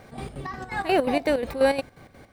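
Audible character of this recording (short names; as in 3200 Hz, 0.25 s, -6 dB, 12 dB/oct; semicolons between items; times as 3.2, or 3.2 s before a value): chopped level 5.6 Hz, depth 65%, duty 60%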